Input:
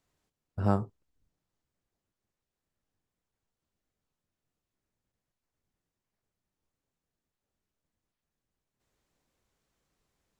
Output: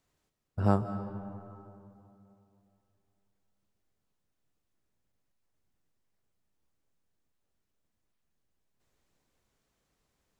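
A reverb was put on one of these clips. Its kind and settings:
comb and all-pass reverb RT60 2.9 s, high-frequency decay 0.5×, pre-delay 110 ms, DRR 10 dB
level +1 dB

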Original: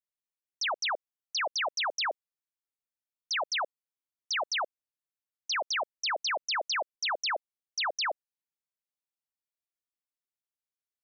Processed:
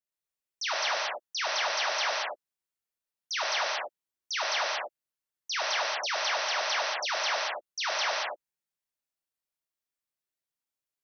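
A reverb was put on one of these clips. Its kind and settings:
reverb whose tail is shaped and stops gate 250 ms flat, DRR −4.5 dB
level −3.5 dB

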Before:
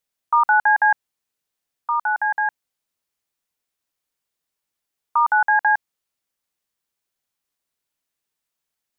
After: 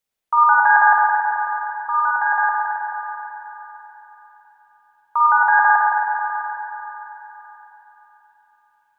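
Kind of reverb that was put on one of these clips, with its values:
spring reverb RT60 3.9 s, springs 45/54 ms, chirp 70 ms, DRR −5.5 dB
level −1.5 dB

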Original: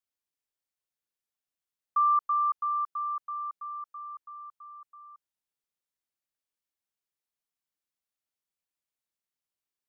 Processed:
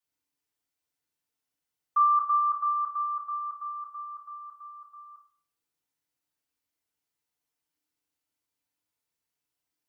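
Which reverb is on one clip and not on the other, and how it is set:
feedback delay network reverb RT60 0.51 s, low-frequency decay 1.45×, high-frequency decay 0.8×, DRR −6.5 dB
level −2.5 dB

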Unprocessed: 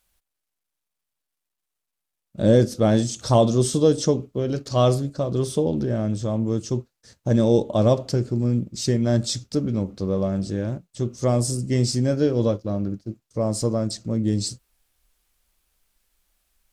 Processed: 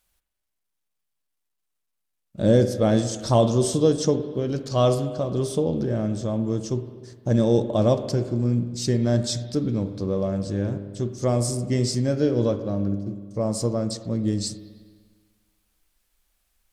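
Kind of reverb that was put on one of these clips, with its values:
spring reverb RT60 1.6 s, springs 50/60 ms, chirp 60 ms, DRR 10 dB
level −1.5 dB

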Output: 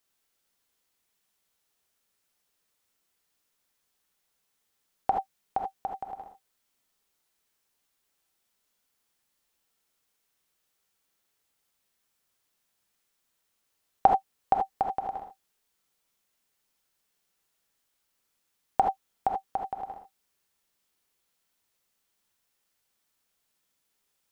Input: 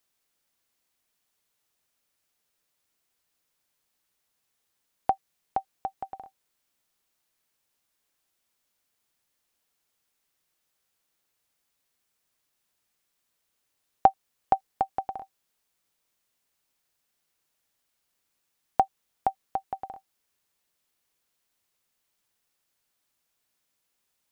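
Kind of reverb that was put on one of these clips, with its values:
reverb whose tail is shaped and stops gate 100 ms rising, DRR 2 dB
level −1.5 dB

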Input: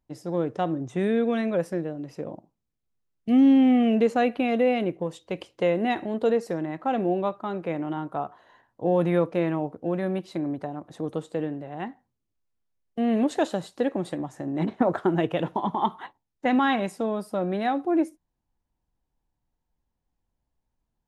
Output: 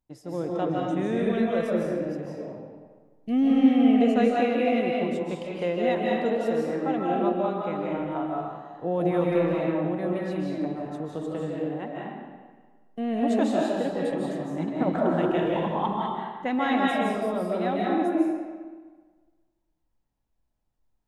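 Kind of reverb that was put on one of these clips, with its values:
comb and all-pass reverb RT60 1.5 s, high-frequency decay 0.75×, pre-delay 115 ms, DRR −4 dB
level −5 dB

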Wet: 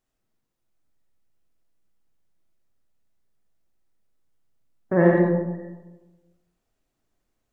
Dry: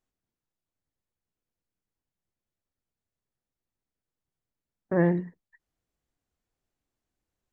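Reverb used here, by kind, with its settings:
comb and all-pass reverb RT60 1.2 s, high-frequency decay 0.35×, pre-delay 25 ms, DRR −2 dB
level +3.5 dB

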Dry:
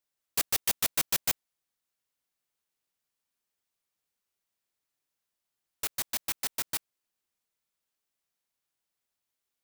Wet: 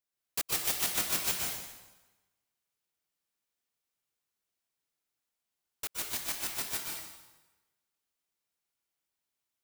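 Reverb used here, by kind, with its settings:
dense smooth reverb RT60 1.1 s, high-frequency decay 0.9×, pre-delay 110 ms, DRR −1.5 dB
level −5 dB

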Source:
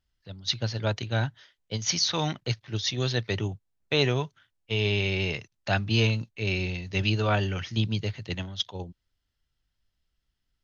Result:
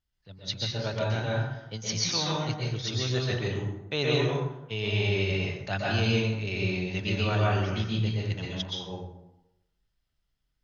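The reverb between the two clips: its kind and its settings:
dense smooth reverb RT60 0.93 s, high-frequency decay 0.55×, pre-delay 110 ms, DRR −4.5 dB
level −6 dB

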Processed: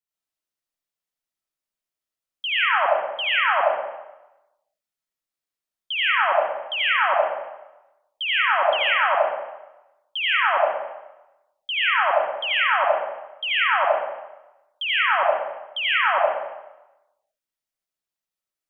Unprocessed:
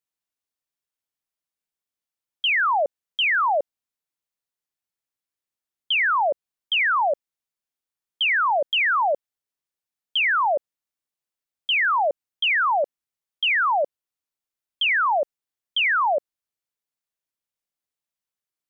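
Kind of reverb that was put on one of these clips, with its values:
comb and all-pass reverb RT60 1 s, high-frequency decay 0.85×, pre-delay 45 ms, DRR −6 dB
level −6 dB

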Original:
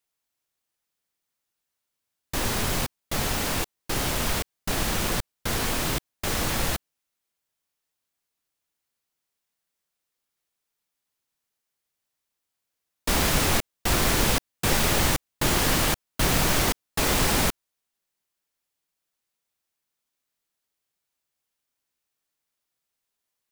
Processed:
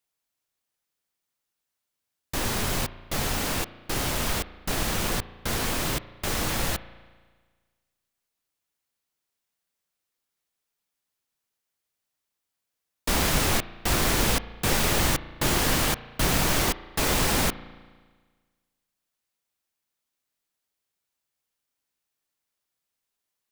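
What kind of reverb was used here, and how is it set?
spring reverb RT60 1.5 s, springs 35 ms, chirp 45 ms, DRR 15 dB
level −1 dB

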